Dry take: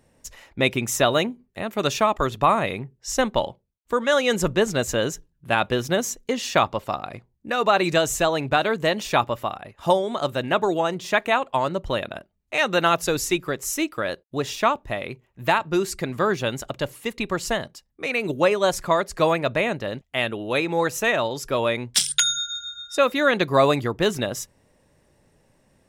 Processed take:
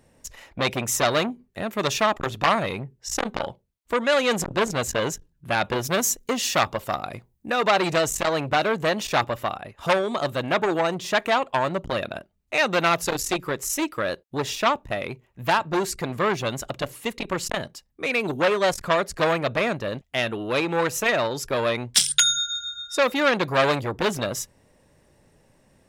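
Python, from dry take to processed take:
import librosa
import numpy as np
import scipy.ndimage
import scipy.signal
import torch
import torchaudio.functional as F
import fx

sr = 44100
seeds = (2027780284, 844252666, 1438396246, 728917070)

y = fx.high_shelf(x, sr, hz=8500.0, db=10.5, at=(5.83, 7.51))
y = fx.transformer_sat(y, sr, knee_hz=2300.0)
y = F.gain(torch.from_numpy(y), 2.0).numpy()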